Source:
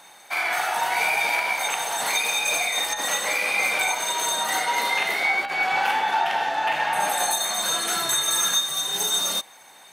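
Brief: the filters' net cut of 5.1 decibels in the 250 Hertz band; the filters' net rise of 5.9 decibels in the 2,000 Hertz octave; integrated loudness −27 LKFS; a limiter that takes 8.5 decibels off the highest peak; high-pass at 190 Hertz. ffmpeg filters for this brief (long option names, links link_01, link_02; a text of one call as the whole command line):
ffmpeg -i in.wav -af "highpass=190,equalizer=frequency=250:width_type=o:gain=-6,equalizer=frequency=2000:width_type=o:gain=7,volume=-5.5dB,alimiter=limit=-19.5dB:level=0:latency=1" out.wav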